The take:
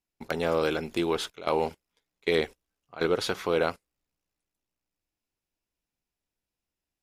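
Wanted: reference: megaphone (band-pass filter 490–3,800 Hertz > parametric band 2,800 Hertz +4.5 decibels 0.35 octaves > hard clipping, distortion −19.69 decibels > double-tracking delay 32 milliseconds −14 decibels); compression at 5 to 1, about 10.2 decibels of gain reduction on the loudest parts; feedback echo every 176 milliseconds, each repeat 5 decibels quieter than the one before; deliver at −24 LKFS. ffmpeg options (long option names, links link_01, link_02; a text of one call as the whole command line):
ffmpeg -i in.wav -filter_complex "[0:a]acompressor=threshold=-32dB:ratio=5,highpass=490,lowpass=3800,equalizer=frequency=2800:width_type=o:width=0.35:gain=4.5,aecho=1:1:176|352|528|704|880|1056|1232:0.562|0.315|0.176|0.0988|0.0553|0.031|0.0173,asoftclip=type=hard:threshold=-26dB,asplit=2[link_01][link_02];[link_02]adelay=32,volume=-14dB[link_03];[link_01][link_03]amix=inputs=2:normalize=0,volume=15dB" out.wav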